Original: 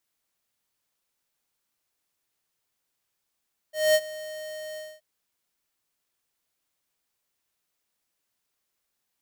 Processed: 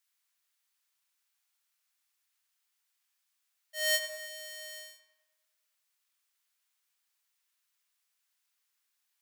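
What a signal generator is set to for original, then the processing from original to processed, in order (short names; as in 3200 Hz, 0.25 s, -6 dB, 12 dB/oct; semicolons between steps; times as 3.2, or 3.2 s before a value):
ADSR square 619 Hz, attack 0.217 s, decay 51 ms, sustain -19 dB, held 1.04 s, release 0.235 s -18 dBFS
HPF 1300 Hz 12 dB/oct; on a send: darkening echo 0.101 s, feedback 66%, low-pass 2000 Hz, level -5 dB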